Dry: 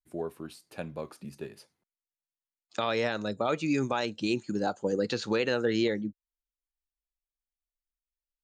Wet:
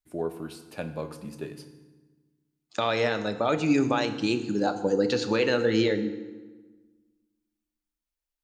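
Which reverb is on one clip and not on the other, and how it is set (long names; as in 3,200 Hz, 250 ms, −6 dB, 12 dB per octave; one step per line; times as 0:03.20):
feedback delay network reverb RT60 1.3 s, low-frequency decay 1.35×, high-frequency decay 0.75×, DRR 8 dB
level +3 dB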